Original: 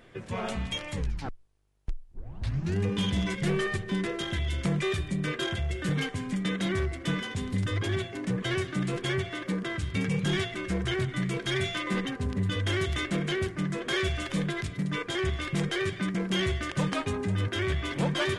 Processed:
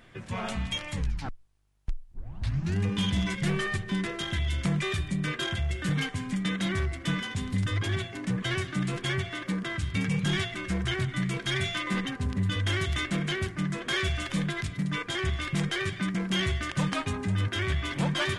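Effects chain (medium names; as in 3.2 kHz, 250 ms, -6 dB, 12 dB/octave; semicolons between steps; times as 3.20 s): peaking EQ 440 Hz -7.5 dB 1 oct; trim +1.5 dB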